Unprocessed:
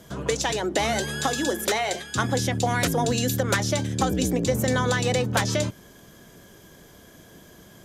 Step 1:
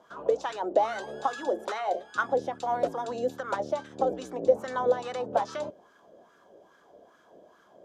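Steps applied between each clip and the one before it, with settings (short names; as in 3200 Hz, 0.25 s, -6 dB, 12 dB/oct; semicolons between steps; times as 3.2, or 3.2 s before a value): high shelf 10000 Hz -6 dB; wah 2.4 Hz 560–1400 Hz, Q 3.4; graphic EQ 125/1000/2000 Hz -7/-3/-10 dB; gain +8 dB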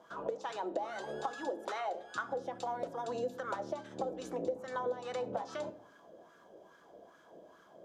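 compressor 6:1, threshold -33 dBFS, peak gain reduction 16.5 dB; reverb RT60 0.65 s, pre-delay 6 ms, DRR 11 dB; gain -1.5 dB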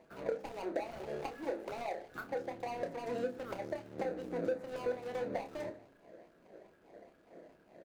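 median filter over 41 samples; doubler 29 ms -8 dB; gain +1.5 dB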